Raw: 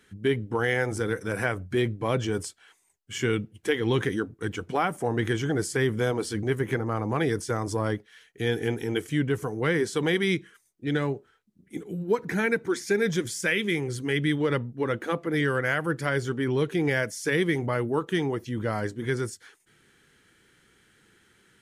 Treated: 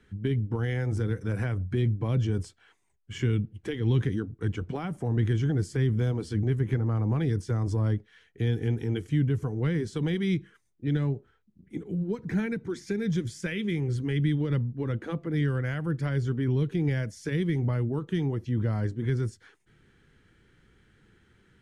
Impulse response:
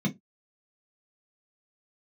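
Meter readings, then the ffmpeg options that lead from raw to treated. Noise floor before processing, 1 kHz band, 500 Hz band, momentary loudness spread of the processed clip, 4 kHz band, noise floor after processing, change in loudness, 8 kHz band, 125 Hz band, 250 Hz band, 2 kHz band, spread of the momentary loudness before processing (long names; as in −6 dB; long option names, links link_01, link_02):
−65 dBFS, −11.0 dB, −7.5 dB, 6 LU, −8.5 dB, −66 dBFS, −1.5 dB, below −10 dB, +5.5 dB, −1.0 dB, −11.0 dB, 6 LU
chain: -filter_complex "[0:a]aemphasis=mode=reproduction:type=bsi,acrossover=split=270|3000[link_01][link_02][link_03];[link_02]acompressor=threshold=-32dB:ratio=6[link_04];[link_01][link_04][link_03]amix=inputs=3:normalize=0,volume=-3dB"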